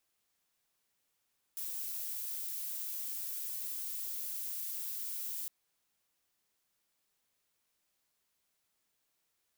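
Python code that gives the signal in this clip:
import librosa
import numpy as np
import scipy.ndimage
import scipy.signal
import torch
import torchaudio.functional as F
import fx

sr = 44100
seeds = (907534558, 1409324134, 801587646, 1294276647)

y = fx.noise_colour(sr, seeds[0], length_s=3.91, colour='violet', level_db=-39.5)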